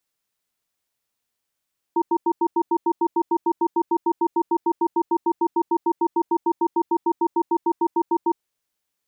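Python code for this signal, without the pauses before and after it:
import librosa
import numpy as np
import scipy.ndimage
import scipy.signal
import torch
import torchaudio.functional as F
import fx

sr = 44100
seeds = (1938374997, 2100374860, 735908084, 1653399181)

y = fx.cadence(sr, length_s=6.38, low_hz=340.0, high_hz=926.0, on_s=0.06, off_s=0.09, level_db=-19.0)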